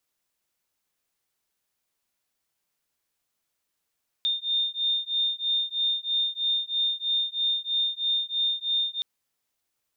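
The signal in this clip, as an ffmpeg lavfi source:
ffmpeg -f lavfi -i "aevalsrc='0.0447*(sin(2*PI*3630*t)+sin(2*PI*3633.1*t))':duration=4.77:sample_rate=44100" out.wav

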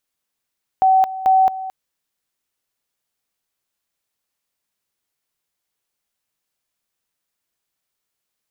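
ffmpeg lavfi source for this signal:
ffmpeg -f lavfi -i "aevalsrc='pow(10,(-10-15*gte(mod(t,0.44),0.22))/20)*sin(2*PI*760*t)':duration=0.88:sample_rate=44100" out.wav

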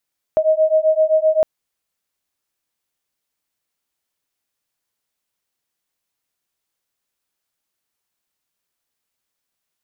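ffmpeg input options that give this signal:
ffmpeg -f lavfi -i "aevalsrc='0.168*(sin(2*PI*625*t)+sin(2*PI*632.7*t))':duration=1.06:sample_rate=44100" out.wav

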